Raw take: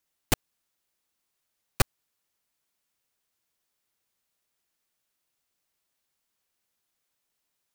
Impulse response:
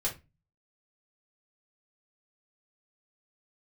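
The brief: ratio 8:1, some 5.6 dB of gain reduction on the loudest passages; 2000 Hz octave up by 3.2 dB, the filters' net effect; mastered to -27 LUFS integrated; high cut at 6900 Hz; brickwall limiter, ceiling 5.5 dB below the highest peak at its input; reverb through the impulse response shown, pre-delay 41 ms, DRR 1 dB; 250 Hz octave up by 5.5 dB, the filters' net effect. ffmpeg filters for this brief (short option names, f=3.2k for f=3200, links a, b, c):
-filter_complex "[0:a]lowpass=6.9k,equalizer=f=250:t=o:g=7,equalizer=f=2k:t=o:g=4,acompressor=threshold=-21dB:ratio=8,alimiter=limit=-14.5dB:level=0:latency=1,asplit=2[a][b];[1:a]atrim=start_sample=2205,adelay=41[c];[b][c]afir=irnorm=-1:irlink=0,volume=-5.5dB[d];[a][d]amix=inputs=2:normalize=0,volume=9dB"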